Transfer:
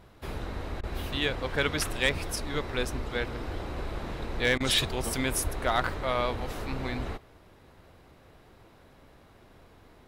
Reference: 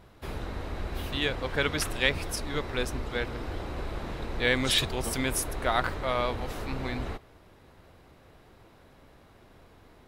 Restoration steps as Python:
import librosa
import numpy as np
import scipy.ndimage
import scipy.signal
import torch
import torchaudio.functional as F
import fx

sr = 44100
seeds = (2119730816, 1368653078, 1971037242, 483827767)

y = fx.fix_declip(x, sr, threshold_db=-15.5)
y = fx.highpass(y, sr, hz=140.0, slope=24, at=(5.43, 5.55), fade=0.02)
y = fx.fix_interpolate(y, sr, at_s=(0.81, 4.58), length_ms=22.0)